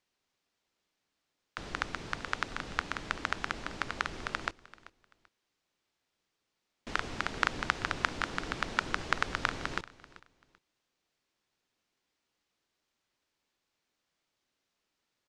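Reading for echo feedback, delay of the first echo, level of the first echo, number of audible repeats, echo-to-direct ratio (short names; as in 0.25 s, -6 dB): 25%, 0.387 s, -19.0 dB, 2, -18.5 dB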